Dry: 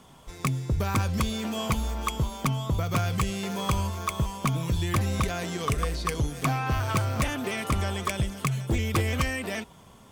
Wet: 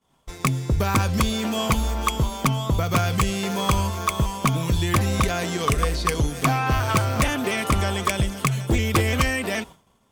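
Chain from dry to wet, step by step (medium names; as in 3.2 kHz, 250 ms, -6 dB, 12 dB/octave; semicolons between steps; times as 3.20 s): expander -40 dBFS; peaking EQ 110 Hz -3 dB 1.4 oct; trim +6.5 dB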